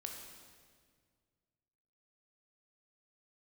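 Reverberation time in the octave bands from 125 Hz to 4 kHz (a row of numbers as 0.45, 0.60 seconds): 2.6, 2.2, 2.0, 1.7, 1.6, 1.5 seconds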